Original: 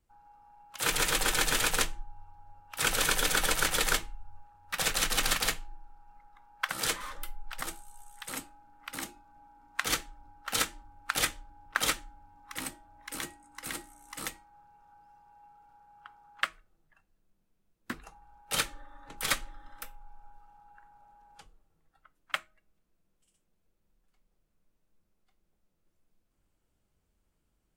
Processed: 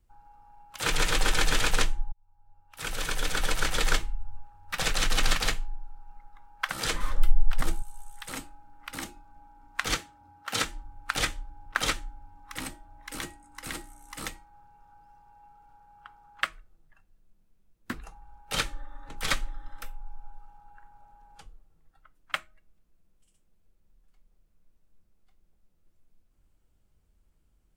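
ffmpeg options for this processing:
ffmpeg -i in.wav -filter_complex "[0:a]asettb=1/sr,asplit=3[link_01][link_02][link_03];[link_01]atrim=end=6.944[link_04];[link_02]atrim=start=6.94:end=7.82,asetpts=PTS-STARTPTS,afade=type=in:duration=0.004:curve=qsin,afade=type=out:start_time=0.876:duration=0.004:curve=qsin,lowshelf=frequency=410:gain=10.5[link_05];[link_03]atrim=start=7.816[link_06];[link_04][link_05]acrossfade=duration=0.004:curve1=hsin:curve2=qsin[link_07];[link_07][link_06]acrossfade=duration=0.004:curve1=qsin:curve2=hsin,asettb=1/sr,asplit=3[link_08][link_09][link_10];[link_08]atrim=end=9.954[link_11];[link_09]atrim=start=9.95:end=10.63,asetpts=PTS-STARTPTS,afade=type=in:duration=0.004:curve=qsin,afade=type=out:start_time=0.676:duration=0.004:curve=qsin,highpass=frequency=86:width=0.5412,highpass=frequency=86:width=1.3066[link_12];[link_10]atrim=start=10.626[link_13];[link_11][link_12]acrossfade=duration=0.004:curve1=hsin:curve2=qsin[link_14];[link_14][link_13]acrossfade=duration=0.004:curve1=qsin:curve2=hsin,asplit=2[link_15][link_16];[link_15]atrim=end=2.12,asetpts=PTS-STARTPTS,afade=type=out:start_time=2.116:duration=0.004:curve=hsin[link_17];[link_16]atrim=start=2.12,asetpts=PTS-STARTPTS,afade=type=in:duration=1.97[link_18];[link_17][link_18]concat=n=2:v=0:a=1,acrossover=split=7800[link_19][link_20];[link_20]acompressor=threshold=-44dB:ratio=4:attack=1:release=60[link_21];[link_19][link_21]amix=inputs=2:normalize=0,lowshelf=frequency=100:gain=10.5,volume=1.5dB" out.wav

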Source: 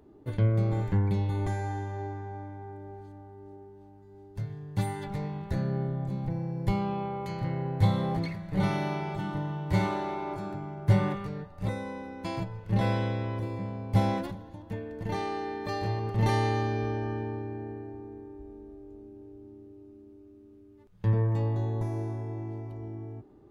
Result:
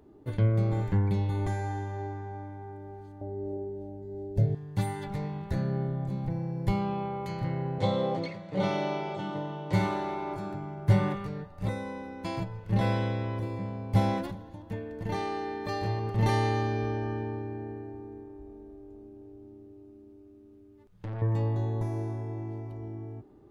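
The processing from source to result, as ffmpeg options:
ffmpeg -i in.wav -filter_complex "[0:a]asettb=1/sr,asplit=3[link_01][link_02][link_03];[link_01]atrim=end=3.214[link_04];[link_02]atrim=start=3.21:end=4.55,asetpts=PTS-STARTPTS,afade=type=in:duration=0.004:curve=qsin,afade=type=out:start_time=1.336:duration=0.004:curve=qsin,lowshelf=frequency=790:width_type=q:width=3:gain=10[link_05];[link_03]atrim=start=4.546[link_06];[link_04][link_05]acrossfade=duration=0.004:curve1=hsin:curve2=qsin[link_07];[link_07][link_06]acrossfade=duration=0.004:curve1=qsin:curve2=hsin,asettb=1/sr,asplit=3[link_08][link_09][link_10];[link_08]atrim=end=7.784[link_11];[link_09]atrim=start=7.78:end=9.73,asetpts=PTS-STARTPTS,afade=type=in:duration=0.004:curve=qsin,afade=type=out:start_time=1.946:duration=0.004:curve=qsin,highpass=frequency=130:width=0.5412,highpass=frequency=130:width=1.3066,equalizer=frequency=160:width_type=q:width=4:gain=-7,equalizer=frequency=530:width_type=q:width=4:gain=10,equalizer=frequency=1700:width_type=q:width=4:gain=-5,equalizer=frequency=3200:width_type=q:width=4:gain=4,lowpass=frequency=7700:width=0.5412,lowpass=frequency=7700:width=1.3066[link_12];[link_10]atrim=start=9.726[link_13];[link_11][link_12]acrossfade=duration=0.004:curve1=hsin:curve2=qsin[link_14];[link_14][link_13]acrossfade=duration=0.004:curve1=qsin:curve2=hsin,asettb=1/sr,asplit=3[link_15][link_16][link_17];[link_15]atrim=end=18.234[link_18];[link_16]atrim=start=18.23:end=21.22,asetpts=PTS-STARTPTS,afade=type=in:duration=0.004:curve=qsin,afade=type=out:start_time=2.986:duration=0.004:curve=qsin,aeval=exprs='(tanh(50.1*val(0)+0.25)-tanh(0.25))/50.1':channel_layout=same[link_19];[link_17]atrim=start=21.216[link_20];[link_18][link_19]acrossfade=duration=0.004:curve1=hsin:curve2=qsin[link_21];[link_21][link_20]acrossfade=duration=0.004:curve1=qsin:curve2=hsin" out.wav

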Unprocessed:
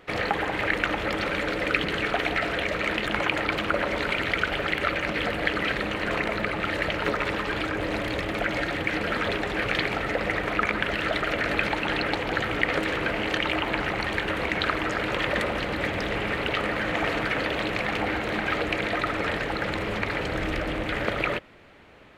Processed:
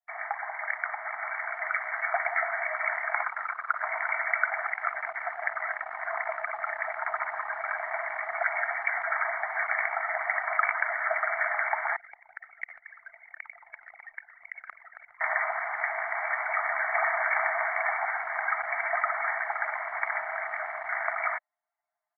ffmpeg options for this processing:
ffmpeg -i in.wav -filter_complex "[0:a]asettb=1/sr,asplit=3[link_01][link_02][link_03];[link_01]atrim=end=3.234[link_04];[link_02]atrim=start=3.23:end=3.84,asetpts=PTS-STARTPTS,afade=type=in:duration=0.004:curve=qsin,afade=type=out:start_time=0.606:duration=0.004:curve=qsin,bandpass=frequency=1300:width_type=q:width=2.2[link_05];[link_03]atrim=start=3.836[link_06];[link_04][link_05]acrossfade=duration=0.004:curve1=hsin:curve2=qsin[link_07];[link_07][link_06]acrossfade=duration=0.004:curve1=qsin:curve2=hsin,asettb=1/sr,asplit=3[link_08][link_09][link_10];[link_08]atrim=end=4.664[link_11];[link_09]atrim=start=4.66:end=7.65,asetpts=PTS-STARTPTS,afade=type=in:duration=0.004:curve=qsin,afade=type=out:start_time=2.986:duration=0.004:curve=qsin,highshelf=frequency=2300:gain=-9.5[link_12];[link_10]atrim=start=7.646[link_13];[link_11][link_12]acrossfade=duration=0.004:curve1=hsin:curve2=qsin[link_14];[link_14][link_13]acrossfade=duration=0.004:curve1=qsin:curve2=hsin,asettb=1/sr,asplit=3[link_15][link_16][link_17];[link_15]atrim=end=11.964[link_18];[link_16]atrim=start=11.96:end=15.21,asetpts=PTS-STARTPTS,afade=type=in:duration=0.004:curve=qsin,afade=type=out:start_time=3.246:duration=0.004:curve=qsin,acrossover=split=150|3000[link_19][link_20][link_21];[link_20]acompressor=threshold=-40dB:ratio=5:attack=3.2:release=140:knee=2.83:detection=peak[link_22];[link_19][link_22][link_21]amix=inputs=3:normalize=0[link_23];[link_17]atrim=start=15.206[link_24];[link_18][link_23]acrossfade=duration=0.004:curve1=hsin:curve2=qsin[link_25];[link_25][link_24]acrossfade=duration=0.004:curve1=qsin:curve2=hsin,asplit=2[link_26][link_27];[link_27]afade=type=in:start_time=16.53:duration=0.01,afade=type=out:start_time=17.31:duration=0.01,aecho=0:1:410|820|1230|1640|2050|2460|2870:0.562341|0.309288|0.170108|0.0935595|0.0514577|0.0283018|0.015566[link_28];[link_26][link_28]amix=inputs=2:normalize=0,asettb=1/sr,asplit=3[link_29][link_30][link_31];[link_29]atrim=end=17.994[link_32];[link_30]atrim=start=17.99:end=18.65,asetpts=PTS-STARTPTS,afade=type=in:duration=0.004:curve=qsin,afade=type=out:start_time=0.656:duration=0.004:curve=qsin,highpass=670,lowpass=2500[link_33];[link_31]atrim=start=18.646[link_34];[link_32][link_33]acrossfade=duration=0.004:curve1=hsin:curve2=qsin[link_35];[link_35][link_34]acrossfade=duration=0.004:curve1=qsin:curve2=hsin,afftfilt=real='re*between(b*sr/4096,620,2300)':imag='im*between(b*sr/4096,620,2300)':win_size=4096:overlap=0.75,anlmdn=3.98,dynaudnorm=framelen=250:gausssize=11:maxgain=7.5dB,volume=-6dB" out.wav

